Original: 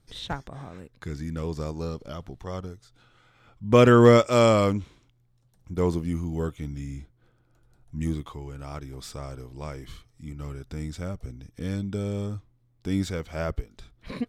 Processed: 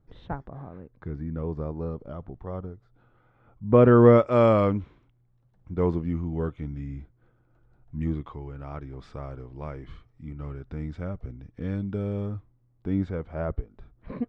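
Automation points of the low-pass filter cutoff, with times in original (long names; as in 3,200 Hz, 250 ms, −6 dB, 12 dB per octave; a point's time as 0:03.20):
0:03.79 1,100 Hz
0:04.61 1,900 Hz
0:12.27 1,900 Hz
0:13.22 1,200 Hz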